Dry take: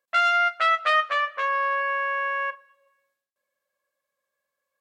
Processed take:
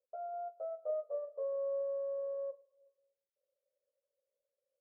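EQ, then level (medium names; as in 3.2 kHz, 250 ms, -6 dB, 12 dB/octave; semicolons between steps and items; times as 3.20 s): elliptic high-pass 430 Hz, stop band 40 dB; steep low-pass 560 Hz 36 dB/octave; +2.5 dB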